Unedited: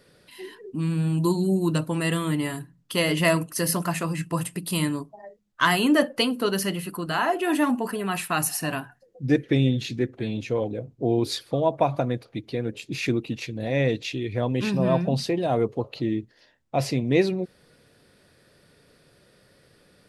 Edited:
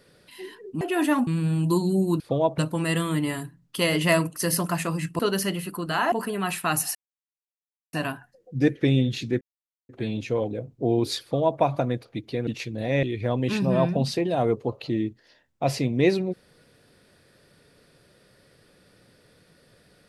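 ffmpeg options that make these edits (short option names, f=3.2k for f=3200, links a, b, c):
-filter_complex "[0:a]asplit=11[a][b][c][d][e][f][g][h][i][j][k];[a]atrim=end=0.812[l];[b]atrim=start=7.318:end=7.782[m];[c]atrim=start=0.808:end=1.742[n];[d]atrim=start=11.418:end=11.802[o];[e]atrim=start=1.738:end=4.352[p];[f]atrim=start=6.388:end=7.322[q];[g]atrim=start=7.778:end=8.61,asetpts=PTS-STARTPTS,afade=t=out:st=0.828:d=0.004:c=hsin,apad=pad_dur=0.98[r];[h]atrim=start=8.61:end=10.09,asetpts=PTS-STARTPTS,afade=t=in:d=0.004:c=hsin,afade=t=out:st=1.476:d=0.004:c=hsin,apad=pad_dur=0.48[s];[i]atrim=start=10.09:end=12.672,asetpts=PTS-STARTPTS,afade=t=in:d=0.004:c=hsin[t];[j]atrim=start=13.288:end=13.852[u];[k]atrim=start=14.148[v];[l][m]acrossfade=d=0.004:c1=hsin:c2=hsin[w];[w][n]acrossfade=d=0.004:c1=hsin:c2=hsin[x];[x][o]acrossfade=d=0.004:c1=hsin:c2=hsin[y];[y][p]acrossfade=d=0.004:c1=hsin:c2=hsin[z];[z][q]acrossfade=d=0.004:c1=hsin:c2=hsin[aa];[r][s][t]concat=n=3:v=0:a=1[ab];[aa][ab]acrossfade=d=0.004:c1=hsin:c2=hsin[ac];[ac][u]acrossfade=d=0.004:c1=hsin:c2=hsin[ad];[ad][v]acrossfade=d=0.004:c1=hsin:c2=hsin"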